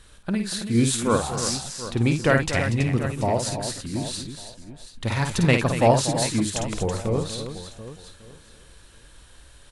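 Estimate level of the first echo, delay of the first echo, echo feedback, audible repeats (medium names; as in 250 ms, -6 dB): -6.0 dB, 52 ms, no regular repeats, 7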